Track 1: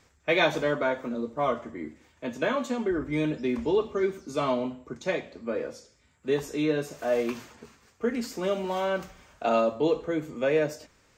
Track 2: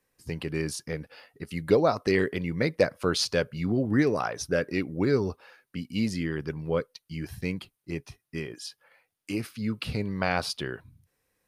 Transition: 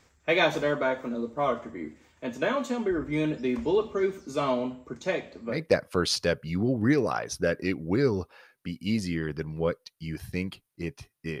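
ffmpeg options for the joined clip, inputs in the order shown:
ffmpeg -i cue0.wav -i cue1.wav -filter_complex "[0:a]apad=whole_dur=11.4,atrim=end=11.4,atrim=end=5.64,asetpts=PTS-STARTPTS[link_01];[1:a]atrim=start=2.55:end=8.49,asetpts=PTS-STARTPTS[link_02];[link_01][link_02]acrossfade=duration=0.18:curve1=tri:curve2=tri" out.wav

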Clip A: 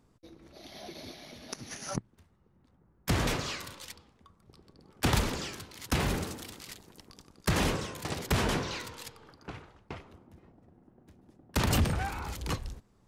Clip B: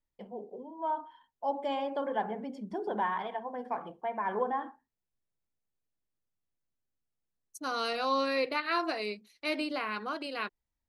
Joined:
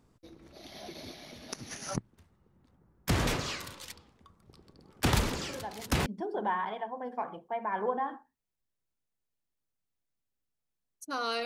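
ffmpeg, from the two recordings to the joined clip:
ffmpeg -i cue0.wav -i cue1.wav -filter_complex "[1:a]asplit=2[link_01][link_02];[0:a]apad=whole_dur=11.45,atrim=end=11.45,atrim=end=6.062[link_03];[link_02]atrim=start=2.588:end=7.98[link_04];[link_01]atrim=start=2.02:end=2.59,asetpts=PTS-STARTPTS,volume=-9dB,afade=type=in:duration=0.004:curve=hsin,afade=type=out:start_time=0.566:duration=0.004:curve=hsin,adelay=242109S[link_05];[link_03][link_04]acrossfade=duration=0.004:curve1=hsin:curve2=hsin[link_06];[link_06][link_05]amix=inputs=2:normalize=0" out.wav

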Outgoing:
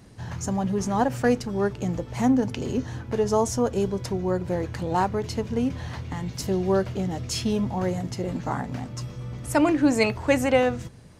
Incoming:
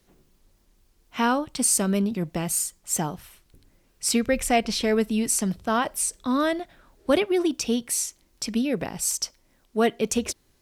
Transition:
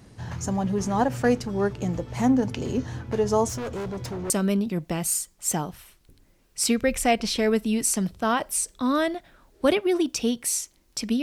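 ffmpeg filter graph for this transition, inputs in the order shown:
ffmpeg -i cue0.wav -i cue1.wav -filter_complex "[0:a]asettb=1/sr,asplit=3[link_01][link_02][link_03];[link_01]atrim=end=3.494[link_04];[link_02]atrim=start=3.49:end=4.3,asetpts=PTS-STARTPTS,afade=type=in:duration=0.004:curve=qsin,afade=type=out:start_time=0.806:duration=0.004:curve=qsin,asoftclip=type=hard:threshold=-29dB[link_05];[link_03]atrim=start=4.296[link_06];[link_04][link_05]acrossfade=duration=0.004:curve1=hsin:curve2=qsin[link_07];[link_07][link_06]acrossfade=duration=0.004:curve1=qsin:curve2=hsin,apad=whole_dur=11.22,atrim=end=11.22,atrim=end=4.302[link_08];[1:a]atrim=start=1.748:end=8.67[link_09];[link_08][link_09]acrossfade=duration=0.004:curve1=hsin:curve2=hsin" out.wav

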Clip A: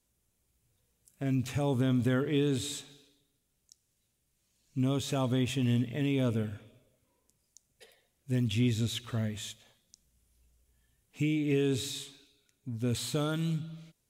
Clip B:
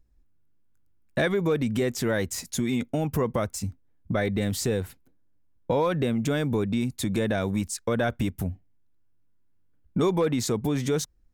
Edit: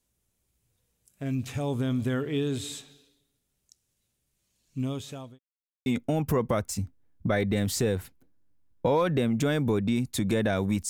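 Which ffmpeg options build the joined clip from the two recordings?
ffmpeg -i cue0.wav -i cue1.wav -filter_complex "[0:a]apad=whole_dur=10.89,atrim=end=10.89,asplit=2[link_01][link_02];[link_01]atrim=end=5.39,asetpts=PTS-STARTPTS,afade=type=out:start_time=4.76:duration=0.63[link_03];[link_02]atrim=start=5.39:end=5.86,asetpts=PTS-STARTPTS,volume=0[link_04];[1:a]atrim=start=2.71:end=7.74,asetpts=PTS-STARTPTS,afade=type=in:duration=0.004:curve=hsin[link_05];[link_03][link_04][link_05]concat=n=3:v=0:a=1" out.wav

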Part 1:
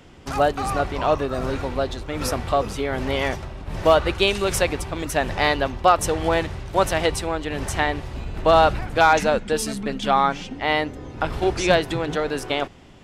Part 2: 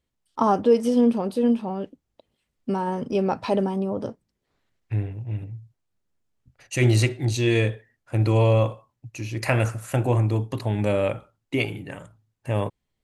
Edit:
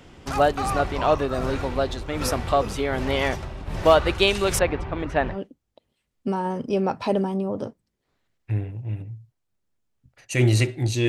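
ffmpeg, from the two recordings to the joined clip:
ffmpeg -i cue0.wav -i cue1.wav -filter_complex "[0:a]asettb=1/sr,asplit=3[link_01][link_02][link_03];[link_01]atrim=end=4.594[link_04];[link_02]atrim=start=4.59:end=5.39,asetpts=PTS-STARTPTS,afade=type=in:duration=0.004:curve=qsin,afade=type=out:start_time=0.796:duration=0.004:curve=qsin,lowpass=2200[link_05];[link_03]atrim=start=5.386[link_06];[link_04][link_05]acrossfade=duration=0.004:curve1=hsin:curve2=qsin[link_07];[link_07][link_06]acrossfade=duration=0.004:curve1=qsin:curve2=hsin,apad=whole_dur=11.08,atrim=end=11.08,atrim=end=5.39,asetpts=PTS-STARTPTS[link_08];[1:a]atrim=start=1.69:end=7.5,asetpts=PTS-STARTPTS[link_09];[link_08][link_09]acrossfade=duration=0.12:curve1=tri:curve2=tri" out.wav

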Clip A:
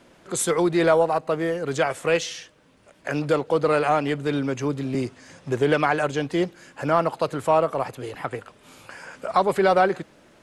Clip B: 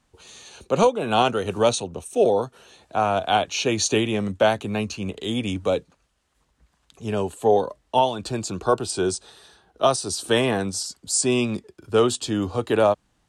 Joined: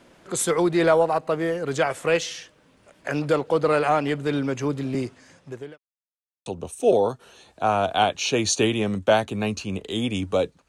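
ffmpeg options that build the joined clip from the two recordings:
ffmpeg -i cue0.wav -i cue1.wav -filter_complex "[0:a]apad=whole_dur=10.68,atrim=end=10.68,asplit=2[link_01][link_02];[link_01]atrim=end=5.78,asetpts=PTS-STARTPTS,afade=type=out:start_time=4.89:duration=0.89[link_03];[link_02]atrim=start=5.78:end=6.46,asetpts=PTS-STARTPTS,volume=0[link_04];[1:a]atrim=start=1.79:end=6.01,asetpts=PTS-STARTPTS,afade=type=in:duration=0.004:curve=hsin[link_05];[link_03][link_04][link_05]concat=n=3:v=0:a=1" out.wav

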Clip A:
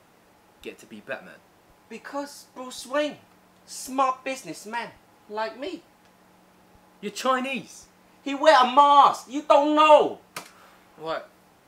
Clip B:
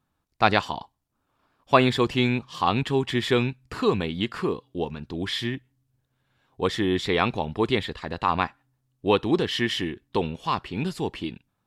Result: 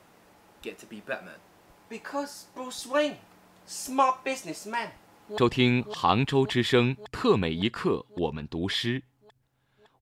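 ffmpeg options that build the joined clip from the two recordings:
ffmpeg -i cue0.wav -i cue1.wav -filter_complex "[0:a]apad=whole_dur=10.01,atrim=end=10.01,atrim=end=5.382[link_01];[1:a]atrim=start=1.958:end=6.59[link_02];[link_01][link_02]acrossfade=duration=0.004:curve1=hsin:curve2=hsin,asplit=2[link_03][link_04];[link_04]afade=type=in:start_time=4.94:duration=0.01,afade=type=out:start_time=5.38:duration=0.01,aecho=0:1:560|1120|1680|2240|2800|3360|3920|4480|5040|5600|6160|6720:0.668344|0.467841|0.327489|0.229242|0.160469|0.112329|0.07863|0.055041|0.0385287|0.0269701|0.0188791|0.0132153[link_05];[link_03][link_05]amix=inputs=2:normalize=0" out.wav

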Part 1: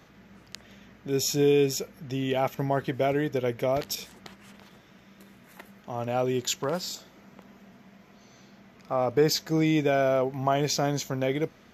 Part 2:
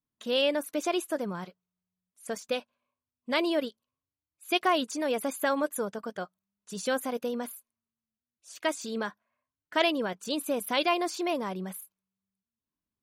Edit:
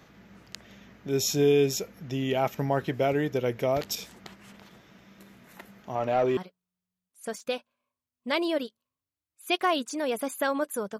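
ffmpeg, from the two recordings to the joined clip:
ffmpeg -i cue0.wav -i cue1.wav -filter_complex "[0:a]asettb=1/sr,asplit=3[link_01][link_02][link_03];[link_01]atrim=end=5.954[link_04];[link_02]atrim=start=5.95:end=6.37,asetpts=PTS-STARTPTS,afade=type=in:duration=0.004:curve=qsin,afade=type=out:start_time=0.416:duration=0.004:curve=qsin,asplit=2[link_05][link_06];[link_06]highpass=frequency=720:poles=1,volume=15dB,asoftclip=type=tanh:threshold=-14.5dB[link_07];[link_05][link_07]amix=inputs=2:normalize=0,lowpass=frequency=1500:poles=1,volume=-6dB[link_08];[link_03]atrim=start=6.366[link_09];[link_04][link_08]acrossfade=duration=0.004:curve1=hsin:curve2=qsin[link_10];[link_10][link_09]acrossfade=duration=0.004:curve1=qsin:curve2=hsin,apad=whole_dur=10.99,atrim=end=10.99,atrim=end=6.372[link_11];[1:a]atrim=start=1.388:end=6.01[link_12];[link_11][link_12]acrossfade=duration=0.004:curve1=hsin:curve2=hsin" out.wav

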